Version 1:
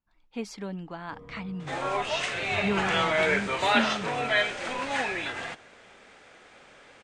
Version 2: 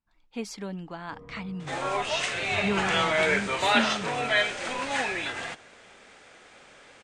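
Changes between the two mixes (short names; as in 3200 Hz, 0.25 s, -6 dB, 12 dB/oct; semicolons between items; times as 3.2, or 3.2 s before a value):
first sound: add LPF 2100 Hz; master: add high shelf 5300 Hz +6.5 dB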